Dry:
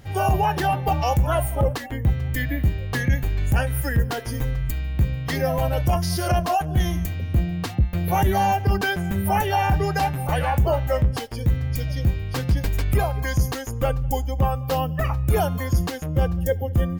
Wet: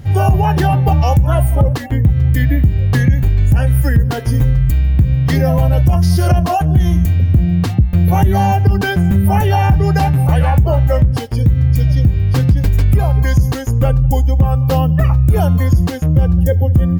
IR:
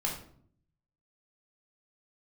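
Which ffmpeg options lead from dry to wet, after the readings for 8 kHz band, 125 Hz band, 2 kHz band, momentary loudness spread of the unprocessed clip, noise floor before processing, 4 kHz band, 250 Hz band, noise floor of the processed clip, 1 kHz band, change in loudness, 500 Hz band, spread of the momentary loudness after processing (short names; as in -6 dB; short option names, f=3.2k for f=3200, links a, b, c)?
+2.5 dB, +12.0 dB, +3.5 dB, 5 LU, -30 dBFS, +3.0 dB, +11.0 dB, -19 dBFS, +4.0 dB, +10.0 dB, +4.5 dB, 2 LU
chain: -filter_complex "[0:a]equalizer=f=100:t=o:w=2.9:g=12.5,asplit=2[a][b];[b]alimiter=limit=-7.5dB:level=0:latency=1,volume=0.5dB[c];[a][c]amix=inputs=2:normalize=0,acompressor=threshold=-5dB:ratio=6,volume=-2dB"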